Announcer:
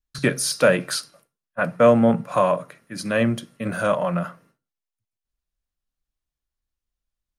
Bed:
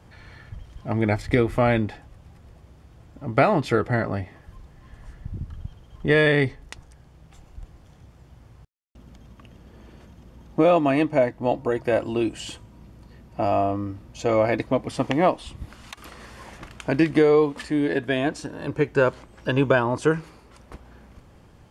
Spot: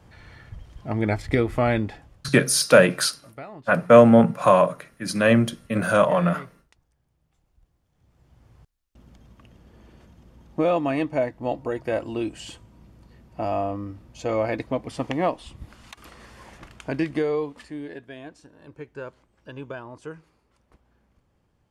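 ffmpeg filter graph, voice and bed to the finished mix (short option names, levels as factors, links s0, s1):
-filter_complex "[0:a]adelay=2100,volume=1.41[s0];[1:a]volume=5.96,afade=t=out:st=1.97:d=0.39:silence=0.105925,afade=t=in:st=7.91:d=0.69:silence=0.141254,afade=t=out:st=16.7:d=1.38:silence=0.223872[s1];[s0][s1]amix=inputs=2:normalize=0"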